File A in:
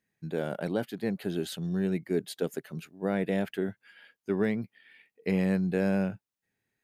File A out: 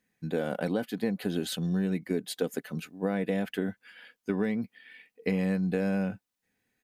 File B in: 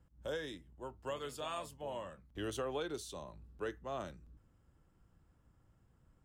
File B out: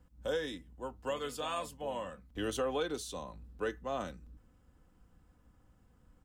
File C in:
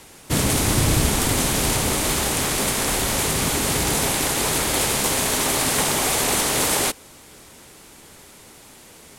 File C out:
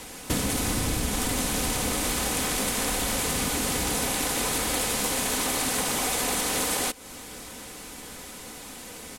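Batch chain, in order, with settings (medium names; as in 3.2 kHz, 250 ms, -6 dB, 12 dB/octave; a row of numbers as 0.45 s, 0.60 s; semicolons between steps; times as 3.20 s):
comb 4 ms, depth 43%; compression 5:1, threshold -29 dBFS; trim +4 dB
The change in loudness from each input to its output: 0.0 LU, +4.5 LU, -6.0 LU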